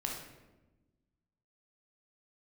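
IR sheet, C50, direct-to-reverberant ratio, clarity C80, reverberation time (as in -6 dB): 2.5 dB, -1.0 dB, 6.0 dB, 1.1 s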